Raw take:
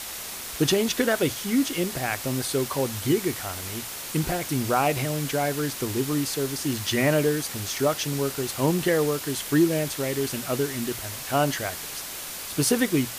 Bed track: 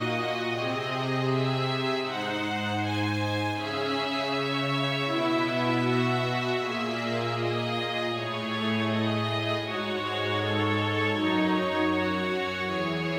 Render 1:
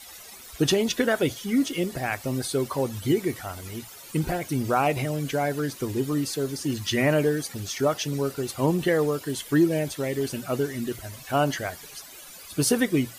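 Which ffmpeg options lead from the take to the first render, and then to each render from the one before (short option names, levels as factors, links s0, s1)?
-af "afftdn=nr=14:nf=-36"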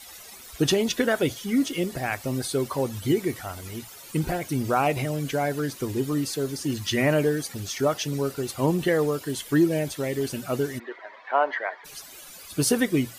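-filter_complex "[0:a]asplit=3[s0][s1][s2];[s0]afade=t=out:st=10.78:d=0.02[s3];[s1]highpass=f=430:w=0.5412,highpass=f=430:w=1.3066,equalizer=f=960:t=q:w=4:g=9,equalizer=f=1900:t=q:w=4:g=8,equalizer=f=2800:t=q:w=4:g=-9,lowpass=f=3000:w=0.5412,lowpass=f=3000:w=1.3066,afade=t=in:st=10.78:d=0.02,afade=t=out:st=11.84:d=0.02[s4];[s2]afade=t=in:st=11.84:d=0.02[s5];[s3][s4][s5]amix=inputs=3:normalize=0"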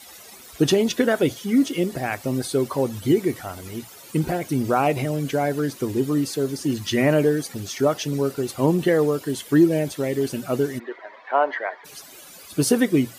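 -af "highpass=f=310:p=1,lowshelf=f=470:g=11"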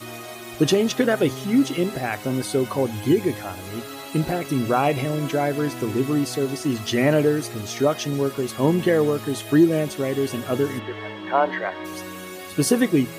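-filter_complex "[1:a]volume=0.376[s0];[0:a][s0]amix=inputs=2:normalize=0"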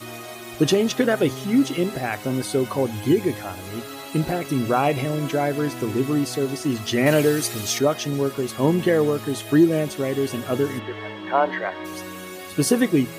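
-filter_complex "[0:a]asettb=1/sr,asplit=3[s0][s1][s2];[s0]atrim=end=7.064[s3];[s1]atrim=start=7.06:end=7.79,asetpts=PTS-STARTPTS,afade=t=in:d=0.004:c=qsin,afade=t=out:st=0.726:d=0.004:c=qsin,highshelf=f=2300:g=10[s4];[s2]atrim=start=7.786[s5];[s3][s4]acrossfade=d=0.004:c1=hsin:c2=qsin[s6];[s6][s5]acrossfade=d=0.004:c1=qsin:c2=hsin"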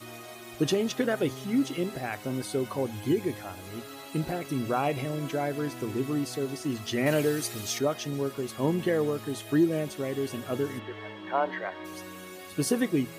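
-af "volume=0.422"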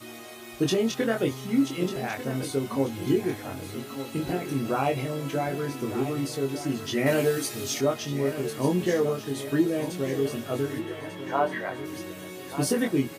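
-filter_complex "[0:a]asplit=2[s0][s1];[s1]adelay=22,volume=0.668[s2];[s0][s2]amix=inputs=2:normalize=0,aecho=1:1:1194|2388|3582|4776:0.266|0.104|0.0405|0.0158"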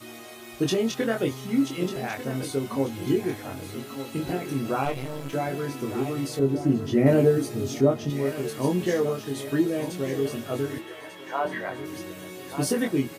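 -filter_complex "[0:a]asettb=1/sr,asplit=3[s0][s1][s2];[s0]atrim=end=4.854[s3];[s1]atrim=start=4.85:end=5.33,asetpts=PTS-STARTPTS,afade=t=in:d=0.004:c=qsin,afade=t=out:st=0.476:d=0.004:c=qsin,aeval=exprs='if(lt(val(0),0),0.251*val(0),val(0))':c=same[s4];[s2]atrim=start=5.326[s5];[s3][s4]acrossfade=d=0.004:c1=hsin:c2=qsin[s6];[s6][s5]acrossfade=d=0.004:c1=qsin:c2=hsin,asettb=1/sr,asplit=3[s7][s8][s9];[s7]atrim=end=6.394[s10];[s8]atrim=start=6.39:end=8.1,asetpts=PTS-STARTPTS,afade=t=in:d=0.004:c=qsin,afade=t=out:st=1.706:d=0.004:c=qsin,tiltshelf=f=850:g=8.5[s11];[s9]atrim=start=8.096[s12];[s10][s11]acrossfade=d=0.004:c1=hsin:c2=qsin[s13];[s13][s12]acrossfade=d=0.004:c1=qsin:c2=hsin,asettb=1/sr,asplit=3[s14][s15][s16];[s14]atrim=end=10.784[s17];[s15]atrim=start=10.78:end=11.45,asetpts=PTS-STARTPTS,afade=t=in:d=0.004:c=qsin,afade=t=out:st=0.666:d=0.004:c=qsin,highpass=f=710:p=1[s18];[s16]atrim=start=11.446[s19];[s17][s18]acrossfade=d=0.004:c1=hsin:c2=qsin[s20];[s20][s19]acrossfade=d=0.004:c1=qsin:c2=hsin"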